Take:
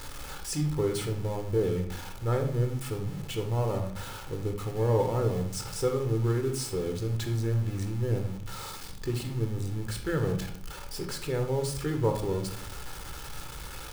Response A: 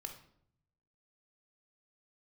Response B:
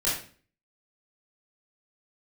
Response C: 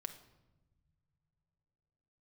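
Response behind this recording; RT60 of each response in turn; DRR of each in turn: A; 0.65 s, 0.40 s, not exponential; 4.5, -9.5, 7.0 dB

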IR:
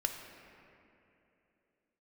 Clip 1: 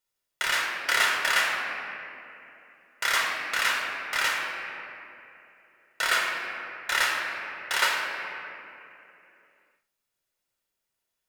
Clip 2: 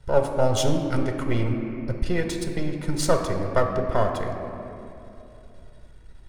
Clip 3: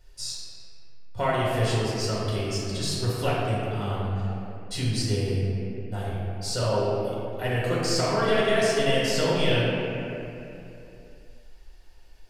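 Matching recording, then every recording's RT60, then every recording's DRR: 2; 2.9, 2.9, 2.9 s; -1.5, 3.5, -7.5 dB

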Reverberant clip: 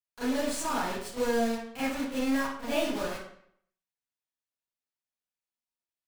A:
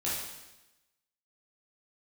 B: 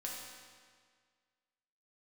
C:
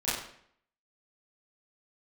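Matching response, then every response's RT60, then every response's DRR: C; 1.0, 1.8, 0.65 s; -8.5, -3.5, -12.0 dB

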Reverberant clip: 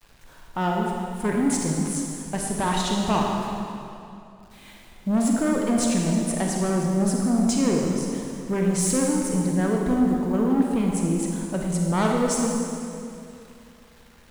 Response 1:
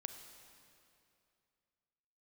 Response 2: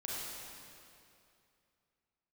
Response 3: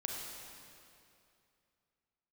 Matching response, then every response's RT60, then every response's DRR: 3; 2.6, 2.6, 2.6 s; 7.0, -6.0, -1.0 dB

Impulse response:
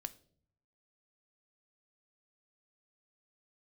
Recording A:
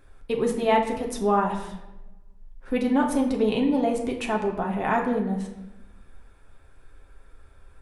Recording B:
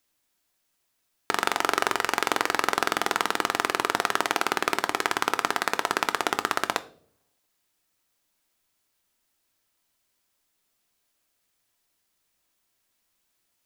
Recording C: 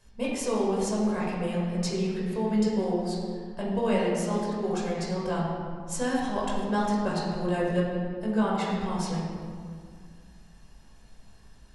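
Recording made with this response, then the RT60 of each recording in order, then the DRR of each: B; 0.95, 0.55, 2.0 s; 0.0, 10.0, -5.0 dB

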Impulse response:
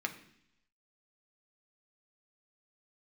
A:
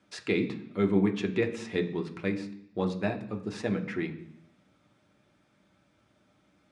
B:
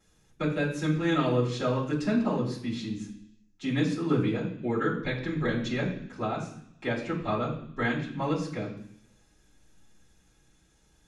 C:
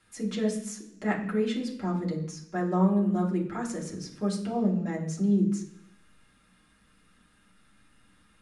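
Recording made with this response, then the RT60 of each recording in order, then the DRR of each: A; 0.70, 0.70, 0.70 s; 3.5, -13.5, -4.5 dB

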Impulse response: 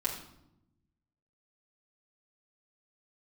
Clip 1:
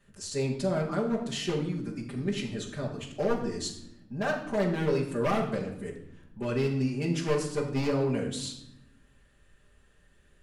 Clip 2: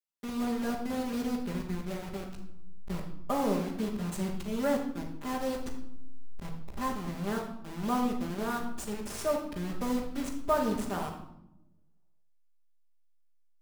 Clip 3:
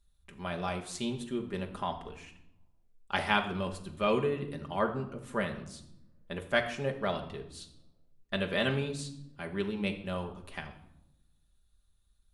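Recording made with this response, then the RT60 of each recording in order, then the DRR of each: 1; 0.80, 0.80, 0.85 s; -5.5, -9.5, 2.5 dB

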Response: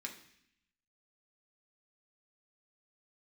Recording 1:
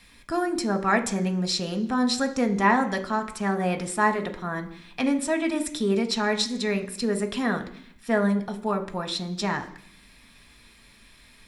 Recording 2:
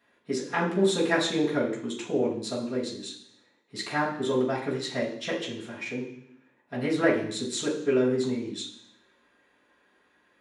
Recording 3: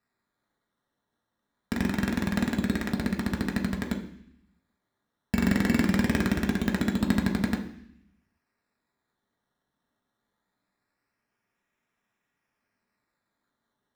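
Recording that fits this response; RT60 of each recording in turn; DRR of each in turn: 3; 0.70, 0.70, 0.70 s; 5.0, -8.0, 0.0 dB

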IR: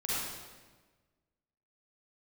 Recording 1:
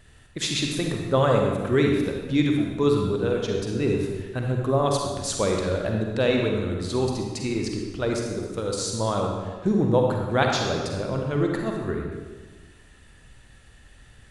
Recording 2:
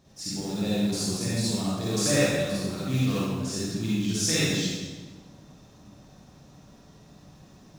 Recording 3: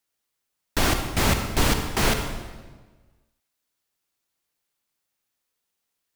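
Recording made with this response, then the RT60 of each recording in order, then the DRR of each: 2; 1.4, 1.4, 1.4 s; 1.0, -9.0, 5.5 dB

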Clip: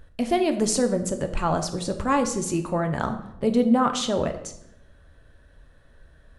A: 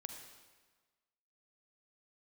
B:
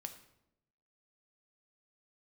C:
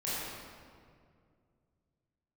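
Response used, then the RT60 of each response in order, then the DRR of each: B; 1.4, 0.85, 2.2 s; 4.5, 6.0, -10.5 dB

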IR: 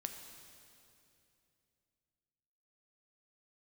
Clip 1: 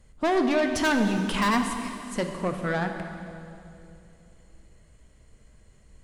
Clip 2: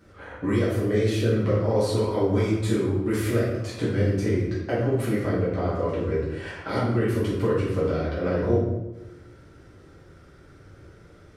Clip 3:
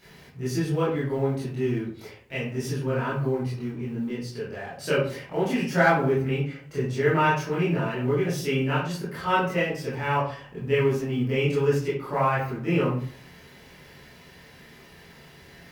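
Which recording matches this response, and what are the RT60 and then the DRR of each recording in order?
1; 2.7, 1.0, 0.50 s; 5.0, -9.5, -10.0 dB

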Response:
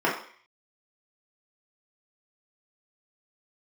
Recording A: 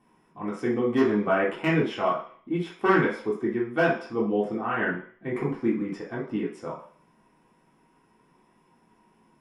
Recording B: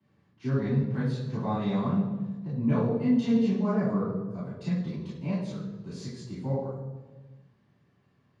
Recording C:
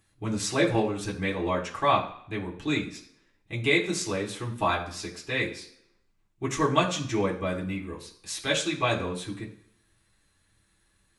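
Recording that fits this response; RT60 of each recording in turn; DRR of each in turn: A; 0.50, 1.3, 0.65 s; -6.5, -12.0, -3.5 dB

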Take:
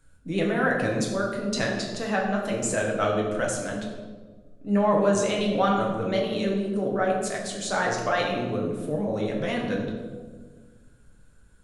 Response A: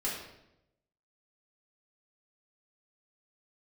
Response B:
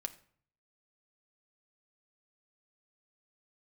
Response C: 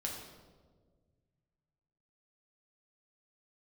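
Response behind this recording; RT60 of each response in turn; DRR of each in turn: C; 0.85, 0.55, 1.6 s; -7.0, 7.5, -2.0 dB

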